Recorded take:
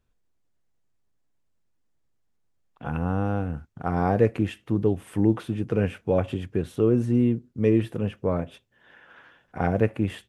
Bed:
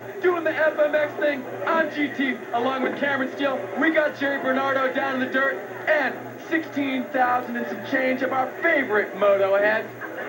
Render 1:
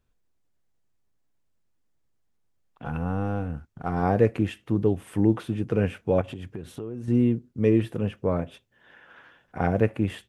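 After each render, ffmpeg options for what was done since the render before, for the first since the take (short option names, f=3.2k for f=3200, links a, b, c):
-filter_complex "[0:a]asettb=1/sr,asplit=3[a][b][c];[a]atrim=end=2.854[d];[b]atrim=start=2.85:end=4.03,asetpts=PTS-STARTPTS,afade=t=in:d=0.004:c=qsin,afade=t=out:st=1.176:d=0.004:c=qsin,aeval=exprs='if(lt(val(0),0),0.708*val(0),val(0))':c=same[e];[c]atrim=start=4.026[f];[d][e]acrossfade=d=0.004:c1=hsin:c2=qsin[g];[g][f]acrossfade=d=0.004:c1=qsin:c2=hsin,asettb=1/sr,asplit=3[h][i][j];[h]atrim=end=6.214[k];[i]atrim=start=6.21:end=7.08,asetpts=PTS-STARTPTS,afade=t=in:d=0.004:c=qsin,afade=t=out:st=0.866:d=0.004:c=qsin,acompressor=threshold=-32dB:ratio=5:attack=3.2:release=140:knee=1:detection=peak[l];[j]atrim=start=7.076[m];[k][l]acrossfade=d=0.004:c1=hsin:c2=qsin[n];[n][m]acrossfade=d=0.004:c1=qsin:c2=hsin"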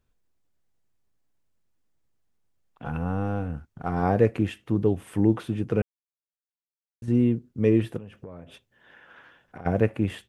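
-filter_complex "[0:a]asplit=3[a][b][c];[a]afade=t=out:st=7.97:d=0.02[d];[b]acompressor=threshold=-36dB:ratio=16:attack=3.2:release=140:knee=1:detection=peak,afade=t=in:st=7.97:d=0.02,afade=t=out:st=9.65:d=0.02[e];[c]afade=t=in:st=9.65:d=0.02[f];[d][e][f]amix=inputs=3:normalize=0,asplit=3[g][h][i];[g]atrim=end=5.82,asetpts=PTS-STARTPTS,afade=t=out:st=5.816:d=0.004:c=hsin[j];[h]atrim=start=5.82:end=7.02,asetpts=PTS-STARTPTS,volume=0[k];[i]atrim=start=7.02,asetpts=PTS-STARTPTS,afade=t=in:d=0.004:c=hsin[l];[j][k][l]concat=n=3:v=0:a=1"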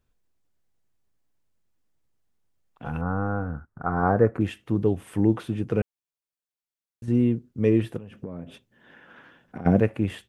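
-filter_complex "[0:a]asettb=1/sr,asplit=3[a][b][c];[a]atrim=end=3.014[d];[b]atrim=start=3.01:end=4.41,asetpts=PTS-STARTPTS,afade=t=in:d=0.004:c=qsin,afade=t=out:st=1.396:d=0.004:c=qsin,highshelf=f=2k:t=q:w=3:g=-12[e];[c]atrim=start=4.406[f];[d][e]acrossfade=d=0.004:c1=hsin:c2=qsin[g];[g][f]acrossfade=d=0.004:c1=qsin:c2=hsin,asettb=1/sr,asplit=3[h][i][j];[h]atrim=end=8.114[k];[i]atrim=start=8.11:end=9.8,asetpts=PTS-STARTPTS,afade=t=in:d=0.004:c=qsin,afade=t=out:st=1.686:d=0.004:c=qsin,equalizer=f=220:w=0.93:g=10[l];[j]atrim=start=9.796[m];[k][l]acrossfade=d=0.004:c1=hsin:c2=qsin[n];[n][m]acrossfade=d=0.004:c1=qsin:c2=hsin"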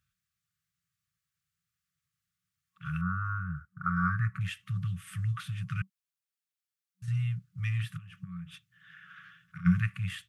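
-af "afftfilt=real='re*(1-between(b*sr/4096,190,1100))':imag='im*(1-between(b*sr/4096,190,1100))':win_size=4096:overlap=0.75,highpass=110"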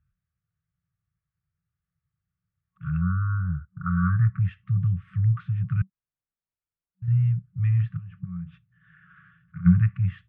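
-af "lowpass=1.7k,aemphasis=mode=reproduction:type=bsi"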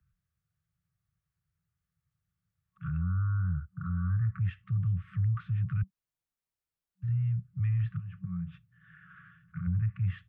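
-filter_complex "[0:a]acrossover=split=100|210[a][b][c];[a]acompressor=threshold=-27dB:ratio=4[d];[b]acompressor=threshold=-35dB:ratio=4[e];[c]acompressor=threshold=-41dB:ratio=4[f];[d][e][f]amix=inputs=3:normalize=0,acrossover=split=110[g][h];[h]alimiter=level_in=7.5dB:limit=-24dB:level=0:latency=1:release=12,volume=-7.5dB[i];[g][i]amix=inputs=2:normalize=0"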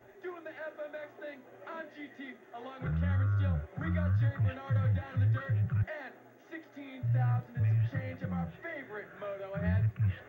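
-filter_complex "[1:a]volume=-21.5dB[a];[0:a][a]amix=inputs=2:normalize=0"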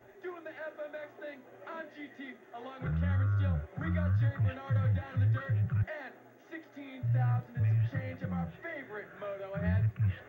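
-af anull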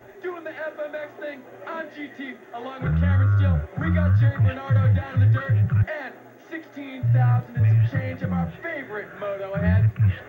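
-af "volume=10.5dB"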